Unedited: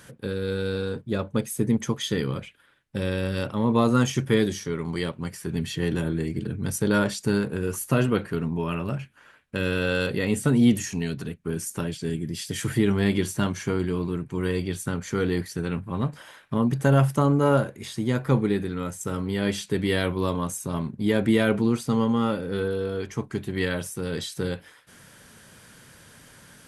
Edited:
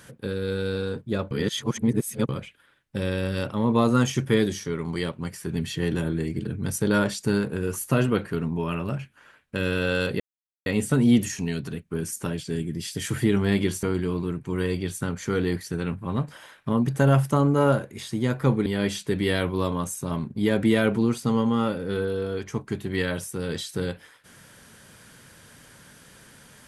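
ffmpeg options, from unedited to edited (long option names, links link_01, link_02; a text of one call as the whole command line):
ffmpeg -i in.wav -filter_complex "[0:a]asplit=6[link_01][link_02][link_03][link_04][link_05][link_06];[link_01]atrim=end=1.312[link_07];[link_02]atrim=start=1.308:end=2.292,asetpts=PTS-STARTPTS,areverse[link_08];[link_03]atrim=start=2.288:end=10.2,asetpts=PTS-STARTPTS,afade=type=out:start_time=7.908:duration=0.004:curve=hsin,apad=pad_dur=0.46[link_09];[link_04]atrim=start=10.2:end=13.372,asetpts=PTS-STARTPTS,afade=type=in:duration=0.004:curve=hsin[link_10];[link_05]atrim=start=13.678:end=18.512[link_11];[link_06]atrim=start=19.288[link_12];[link_07][link_08]acrossfade=duration=0.004:curve1=hsin:curve2=hsin[link_13];[link_09][link_10]concat=n=2:v=0:a=1[link_14];[link_13][link_14]acrossfade=duration=0.004:curve1=hsin:curve2=hsin[link_15];[link_15][link_11]acrossfade=duration=0.004:curve1=hsin:curve2=hsin[link_16];[link_16][link_12]acrossfade=duration=0.004:curve1=hsin:curve2=hsin" out.wav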